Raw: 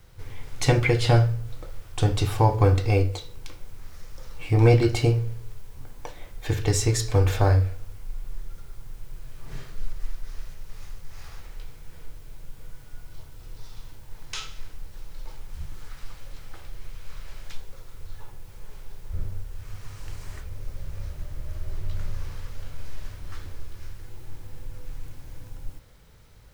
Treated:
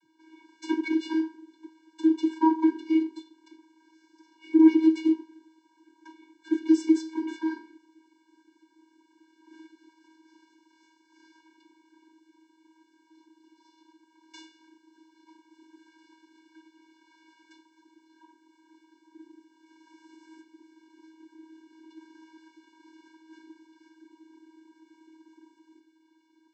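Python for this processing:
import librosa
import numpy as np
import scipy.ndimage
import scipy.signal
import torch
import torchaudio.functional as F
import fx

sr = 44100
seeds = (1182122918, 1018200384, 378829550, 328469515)

y = fx.lower_of_two(x, sr, delay_ms=6.1)
y = fx.vocoder(y, sr, bands=32, carrier='square', carrier_hz=319.0)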